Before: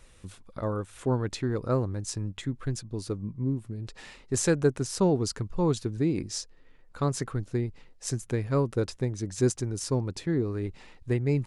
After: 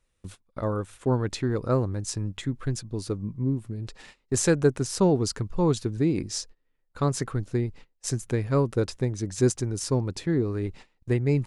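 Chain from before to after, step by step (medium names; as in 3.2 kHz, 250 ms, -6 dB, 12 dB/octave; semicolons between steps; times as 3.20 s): gate -45 dBFS, range -21 dB; trim +2.5 dB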